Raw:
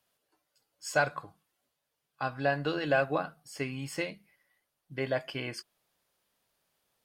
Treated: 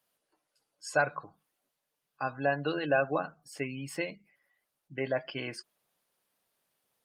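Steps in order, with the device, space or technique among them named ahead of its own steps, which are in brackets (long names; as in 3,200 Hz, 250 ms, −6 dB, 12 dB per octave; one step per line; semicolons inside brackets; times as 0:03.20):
noise-suppressed video call (high-pass filter 130 Hz 12 dB per octave; gate on every frequency bin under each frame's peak −25 dB strong; Opus 32 kbit/s 48,000 Hz)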